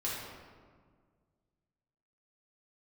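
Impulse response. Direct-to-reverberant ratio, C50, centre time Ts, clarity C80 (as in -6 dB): -7.0 dB, -1.0 dB, 96 ms, 1.5 dB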